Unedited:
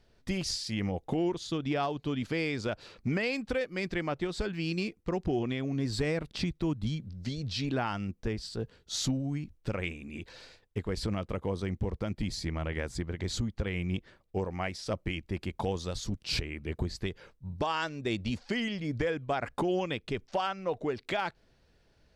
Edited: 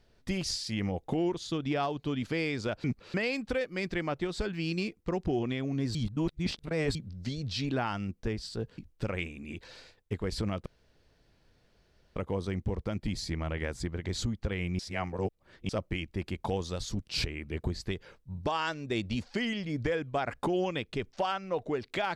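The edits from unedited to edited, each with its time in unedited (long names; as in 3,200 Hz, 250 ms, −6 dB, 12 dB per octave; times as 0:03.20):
0:02.84–0:03.14: reverse
0:05.95–0:06.95: reverse
0:08.78–0:09.43: remove
0:11.31: splice in room tone 1.50 s
0:13.94–0:14.84: reverse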